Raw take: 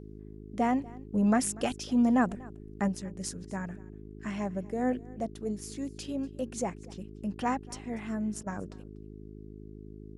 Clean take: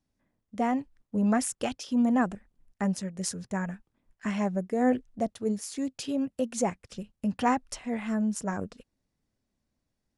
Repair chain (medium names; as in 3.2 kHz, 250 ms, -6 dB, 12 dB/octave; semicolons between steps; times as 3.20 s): de-hum 52.3 Hz, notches 8; interpolate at 8.43 s, 33 ms; inverse comb 241 ms -22 dB; trim 0 dB, from 2.88 s +5 dB